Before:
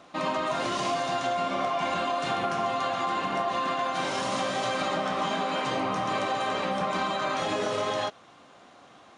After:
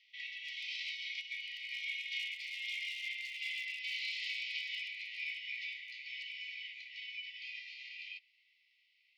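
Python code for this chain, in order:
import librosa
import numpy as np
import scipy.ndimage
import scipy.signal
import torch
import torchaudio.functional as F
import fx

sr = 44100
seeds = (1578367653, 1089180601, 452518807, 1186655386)

p1 = fx.doppler_pass(x, sr, speed_mps=18, closest_m=17.0, pass_at_s=3.04)
p2 = scipy.signal.sosfilt(scipy.signal.butter(4, 5600.0, 'lowpass', fs=sr, output='sos'), p1)
p3 = fx.rider(p2, sr, range_db=5, speed_s=0.5)
p4 = p2 + (p3 * 10.0 ** (1.0 / 20.0))
p5 = fx.formant_shift(p4, sr, semitones=-4)
p6 = np.clip(p5, -10.0 ** (-19.0 / 20.0), 10.0 ** (-19.0 / 20.0))
p7 = fx.brickwall_highpass(p6, sr, low_hz=1900.0)
y = p7 * 10.0 ** (-3.0 / 20.0)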